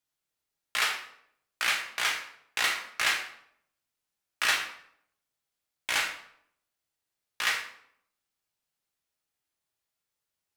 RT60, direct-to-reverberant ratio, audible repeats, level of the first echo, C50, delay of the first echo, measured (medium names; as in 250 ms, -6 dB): 0.70 s, 1.0 dB, no echo, no echo, 7.5 dB, no echo